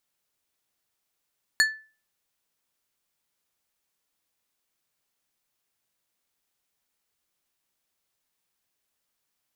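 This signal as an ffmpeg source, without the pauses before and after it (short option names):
-f lavfi -i "aevalsrc='0.188*pow(10,-3*t/0.36)*sin(2*PI*1750*t)+0.112*pow(10,-3*t/0.19)*sin(2*PI*4375*t)+0.0668*pow(10,-3*t/0.136)*sin(2*PI*7000*t)+0.0398*pow(10,-3*t/0.117)*sin(2*PI*8750*t)+0.0237*pow(10,-3*t/0.097)*sin(2*PI*11375*t)':d=0.89:s=44100"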